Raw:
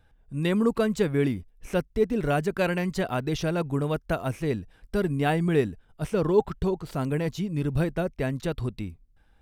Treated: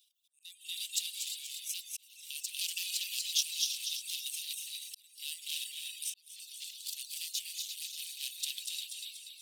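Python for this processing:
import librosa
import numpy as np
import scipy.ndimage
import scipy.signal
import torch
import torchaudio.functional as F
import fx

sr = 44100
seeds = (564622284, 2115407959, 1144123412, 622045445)

p1 = fx.level_steps(x, sr, step_db=9)
p2 = p1 + fx.echo_feedback(p1, sr, ms=241, feedback_pct=46, wet_db=-4, dry=0)
p3 = fx.rev_gated(p2, sr, seeds[0], gate_ms=380, shape='rising', drr_db=2.5)
p4 = fx.rider(p3, sr, range_db=5, speed_s=2.0)
p5 = p3 + (p4 * 10.0 ** (3.0 / 20.0))
p6 = 10.0 ** (-13.5 / 20.0) * np.tanh(p5 / 10.0 ** (-13.5 / 20.0))
p7 = fx.dereverb_blind(p6, sr, rt60_s=0.66)
p8 = fx.auto_swell(p7, sr, attack_ms=540.0)
p9 = np.clip(p8, -10.0 ** (-19.5 / 20.0), 10.0 ** (-19.5 / 20.0))
p10 = scipy.signal.sosfilt(scipy.signal.butter(8, 3000.0, 'highpass', fs=sr, output='sos'), p9)
y = fx.high_shelf(p10, sr, hz=4000.0, db=9.5)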